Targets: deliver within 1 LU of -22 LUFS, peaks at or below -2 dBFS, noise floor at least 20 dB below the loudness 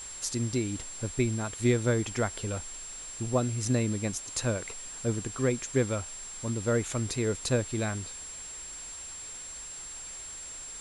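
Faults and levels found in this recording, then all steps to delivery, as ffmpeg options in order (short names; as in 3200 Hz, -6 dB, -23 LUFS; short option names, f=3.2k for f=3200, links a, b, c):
steady tone 7500 Hz; tone level -40 dBFS; noise floor -42 dBFS; noise floor target -52 dBFS; loudness -31.5 LUFS; peak -14.5 dBFS; loudness target -22.0 LUFS
-> -af "bandreject=f=7.5k:w=30"
-af "afftdn=nr=10:nf=-42"
-af "volume=9.5dB"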